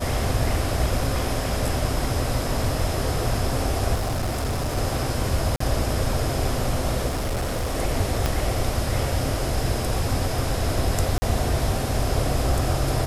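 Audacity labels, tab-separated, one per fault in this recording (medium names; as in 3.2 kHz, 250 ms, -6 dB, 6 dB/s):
3.940000	4.780000	clipped -21.5 dBFS
5.560000	5.600000	dropout 44 ms
7.070000	7.750000	clipped -21.5 dBFS
8.260000	8.260000	pop -8 dBFS
11.180000	11.220000	dropout 40 ms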